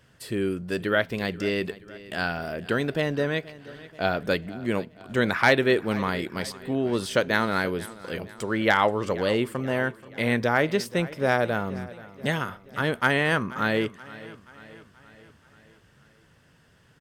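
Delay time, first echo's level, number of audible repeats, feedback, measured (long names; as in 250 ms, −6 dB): 480 ms, −18.5 dB, 4, 54%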